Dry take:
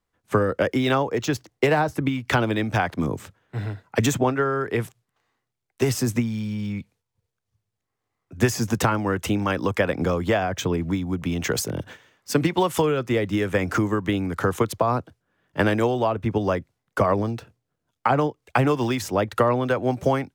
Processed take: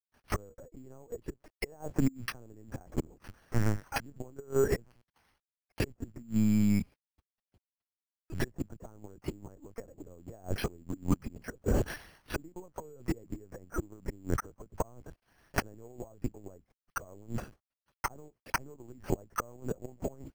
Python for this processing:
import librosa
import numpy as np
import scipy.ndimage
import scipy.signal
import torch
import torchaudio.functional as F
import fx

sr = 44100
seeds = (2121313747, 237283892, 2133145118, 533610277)

y = scipy.signal.sosfilt(scipy.signal.butter(4, 75.0, 'highpass', fs=sr, output='sos'), x)
y = fx.env_lowpass_down(y, sr, base_hz=570.0, full_db=-20.0)
y = fx.low_shelf(y, sr, hz=250.0, db=-11.0, at=(1.32, 2.01), fade=0.02)
y = fx.quant_companded(y, sr, bits=6)
y = fx.gate_flip(y, sr, shuts_db=-17.0, range_db=-30)
y = fx.lpc_vocoder(y, sr, seeds[0], excitation='pitch_kept', order=10)
y = np.repeat(scipy.signal.resample_poly(y, 1, 6), 6)[:len(y)]
y = y * librosa.db_to_amplitude(3.0)